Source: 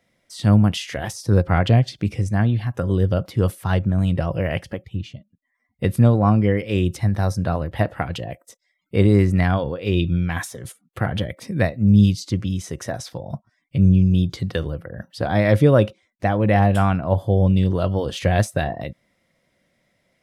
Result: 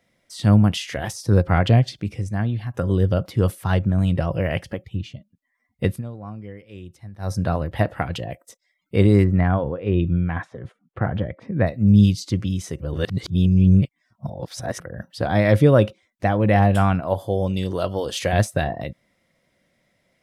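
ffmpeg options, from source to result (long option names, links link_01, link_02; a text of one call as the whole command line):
ffmpeg -i in.wav -filter_complex "[0:a]asplit=3[link_01][link_02][link_03];[link_01]afade=type=out:start_time=9.23:duration=0.02[link_04];[link_02]lowpass=1600,afade=type=in:start_time=9.23:duration=0.02,afade=type=out:start_time=11.66:duration=0.02[link_05];[link_03]afade=type=in:start_time=11.66:duration=0.02[link_06];[link_04][link_05][link_06]amix=inputs=3:normalize=0,asettb=1/sr,asplit=3[link_07][link_08][link_09];[link_07]atrim=end=17.004[link_10];[link_08]atrim=start=17:end=18.33,asetpts=PTS-STARTPTS,afade=type=in:duration=0.004:curve=qsin,afade=type=out:start_time=1.326:duration=0.004:curve=qsin,bass=frequency=250:gain=-9,treble=frequency=4000:gain=7[link_11];[link_09]atrim=start=18.326[link_12];[link_10][link_11]acrossfade=duration=0.004:curve1=hsin:curve2=qsin[link_13];[link_13][link_12]acrossfade=duration=0.004:curve1=qsin:curve2=hsin,asplit=7[link_14][link_15][link_16][link_17][link_18][link_19][link_20];[link_14]atrim=end=2.002[link_21];[link_15]atrim=start=1.998:end=2.742,asetpts=PTS-STARTPTS,volume=-4.5dB[link_22];[link_16]atrim=start=2.738:end=6.02,asetpts=PTS-STARTPTS,afade=type=out:start_time=3.122:duration=0.16:silence=0.112202[link_23];[link_17]atrim=start=6.02:end=7.19,asetpts=PTS-STARTPTS,volume=-19dB[link_24];[link_18]atrim=start=7.19:end=12.802,asetpts=PTS-STARTPTS,afade=type=in:duration=0.16:silence=0.112202[link_25];[link_19]atrim=start=12.798:end=14.802,asetpts=PTS-STARTPTS,areverse[link_26];[link_20]atrim=start=14.798[link_27];[link_21][link_22]acrossfade=duration=0.004:curve1=hsin:curve2=hsin[link_28];[link_23][link_24][link_25]concat=n=3:v=0:a=1[link_29];[link_28][link_29]acrossfade=duration=0.004:curve1=hsin:curve2=hsin[link_30];[link_30][link_26]acrossfade=duration=0.004:curve1=hsin:curve2=hsin[link_31];[link_31][link_27]acrossfade=duration=0.004:curve1=hsin:curve2=hsin" out.wav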